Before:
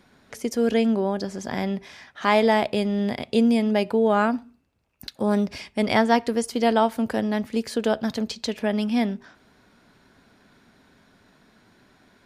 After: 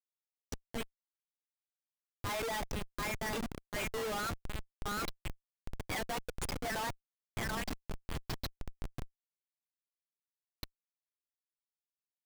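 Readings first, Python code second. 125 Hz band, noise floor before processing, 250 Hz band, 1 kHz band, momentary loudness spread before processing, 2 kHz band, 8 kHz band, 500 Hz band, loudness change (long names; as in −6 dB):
−10.5 dB, −60 dBFS, −23.5 dB, −15.5 dB, 10 LU, −11.0 dB, −5.0 dB, −20.0 dB, −16.5 dB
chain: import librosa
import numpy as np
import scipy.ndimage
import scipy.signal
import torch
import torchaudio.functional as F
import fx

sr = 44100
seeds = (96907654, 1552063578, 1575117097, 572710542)

y = fx.bin_expand(x, sr, power=3.0)
y = scipy.signal.sosfilt(scipy.signal.butter(2, 1100.0, 'highpass', fs=sr, output='sos'), y)
y = fx.echo_stepped(y, sr, ms=729, hz=1500.0, octaves=0.7, feedback_pct=70, wet_db=-1)
y = fx.transient(y, sr, attack_db=-4, sustain_db=7)
y = fx.schmitt(y, sr, flips_db=-36.0)
y = F.gain(torch.from_numpy(y), 3.5).numpy()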